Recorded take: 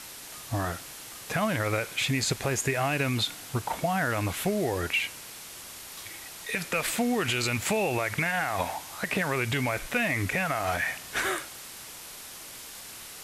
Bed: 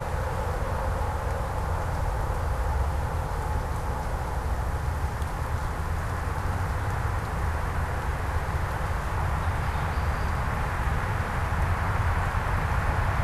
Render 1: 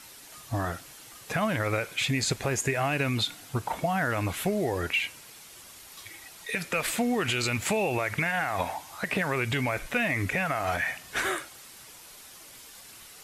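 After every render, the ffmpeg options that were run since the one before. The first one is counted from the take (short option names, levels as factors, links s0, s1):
-af "afftdn=nr=7:nf=-44"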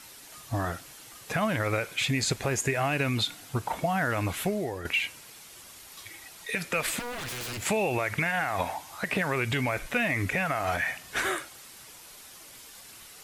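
-filter_complex "[0:a]asettb=1/sr,asplit=3[s0][s1][s2];[s0]atrim=end=6.994[s3];[s1]atrim=start=6.99:end=7.62,asetpts=PTS-STARTPTS,afade=t=in:d=0.004:c=qsin,afade=t=out:st=0.626:d=0.004:c=qsin,aeval=exprs='0.0282*(abs(mod(val(0)/0.0282+3,4)-2)-1)':c=same[s4];[s2]atrim=start=7.616[s5];[s3][s4]acrossfade=d=0.004:c1=hsin:c2=qsin[s6];[s6][s5]acrossfade=d=0.004:c1=qsin:c2=hsin,asplit=2[s7][s8];[s7]atrim=end=4.85,asetpts=PTS-STARTPTS,afade=t=out:st=4.42:d=0.43:silence=0.334965[s9];[s8]atrim=start=4.85,asetpts=PTS-STARTPTS,afade=t=in:d=0.004:c=hsin:silence=0.334965[s10];[s9][s10]concat=n=2:v=0:a=1"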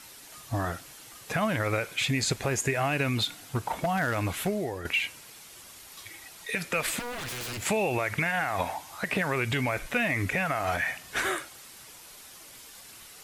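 -filter_complex "[0:a]asettb=1/sr,asplit=3[s0][s1][s2];[s0]atrim=end=3.224[s3];[s1]atrim=start=3.22:end=4.49,asetpts=PTS-STARTPTS,afade=t=in:d=0.004:c=qsin,afade=t=out:st=1.266:d=0.004:c=qsin,aeval=exprs='0.1*(abs(mod(val(0)/0.1+3,4)-2)-1)':c=same[s4];[s2]atrim=start=4.486[s5];[s3][s4]acrossfade=d=0.004:c1=hsin:c2=qsin[s6];[s6][s5]acrossfade=d=0.004:c1=qsin:c2=hsin"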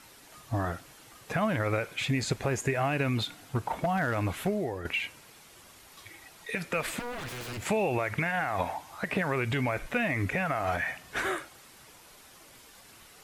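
-af "highshelf=f=2600:g=-8"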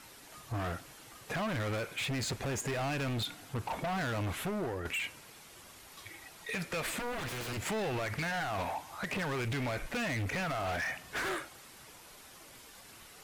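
-af "asoftclip=type=hard:threshold=0.0251"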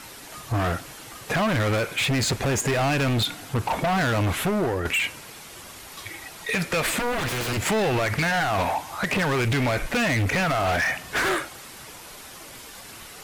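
-af "volume=3.76"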